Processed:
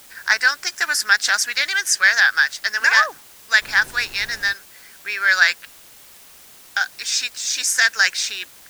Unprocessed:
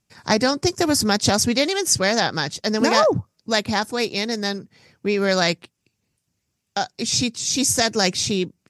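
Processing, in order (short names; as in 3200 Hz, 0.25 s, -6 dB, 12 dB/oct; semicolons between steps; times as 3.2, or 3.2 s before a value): resonant high-pass 1600 Hz, resonance Q 5.9; in parallel at -5 dB: requantised 6-bit, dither triangular; 3.61–4.52 on the sum: added noise pink -37 dBFS; gain -4.5 dB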